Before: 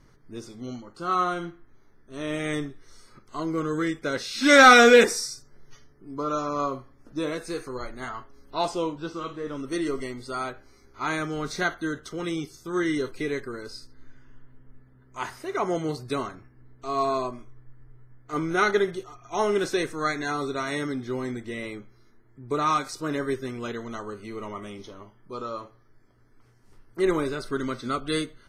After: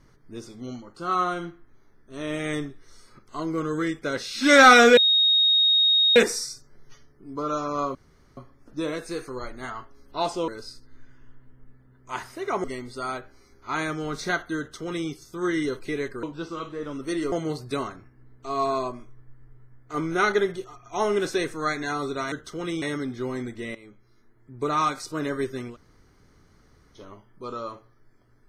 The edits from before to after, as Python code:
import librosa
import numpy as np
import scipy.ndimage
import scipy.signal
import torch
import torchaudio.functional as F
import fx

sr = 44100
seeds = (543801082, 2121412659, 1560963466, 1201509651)

y = fx.edit(x, sr, fx.insert_tone(at_s=4.97, length_s=1.19, hz=3740.0, db=-16.0),
    fx.insert_room_tone(at_s=6.76, length_s=0.42),
    fx.swap(start_s=8.87, length_s=1.09, other_s=13.55, other_length_s=2.16),
    fx.duplicate(start_s=11.91, length_s=0.5, to_s=20.71),
    fx.fade_in_from(start_s=21.64, length_s=0.85, curve='qsin', floor_db=-17.0),
    fx.room_tone_fill(start_s=23.61, length_s=1.25, crossfade_s=0.1), tone=tone)